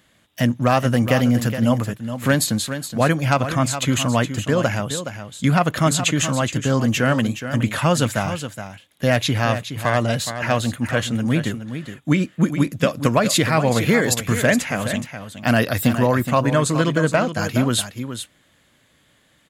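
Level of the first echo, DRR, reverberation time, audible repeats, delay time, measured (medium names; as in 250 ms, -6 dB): -10.0 dB, no reverb, no reverb, 1, 419 ms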